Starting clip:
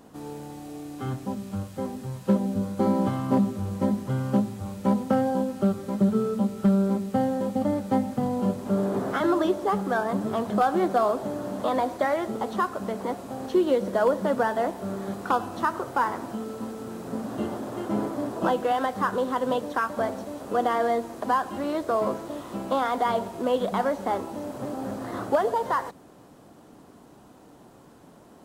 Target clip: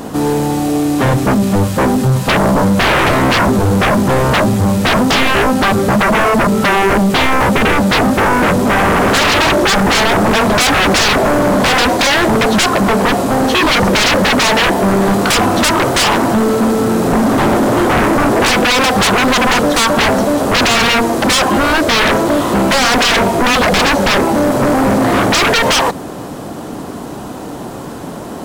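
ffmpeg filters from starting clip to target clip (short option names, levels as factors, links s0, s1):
-af "aeval=exprs='0.237*sin(PI/2*7.08*val(0)/0.237)':c=same,volume=1.68"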